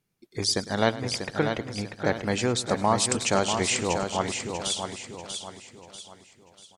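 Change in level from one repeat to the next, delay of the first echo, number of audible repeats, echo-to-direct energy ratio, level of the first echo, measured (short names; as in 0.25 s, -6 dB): no steady repeat, 0.105 s, 12, -5.0 dB, -17.0 dB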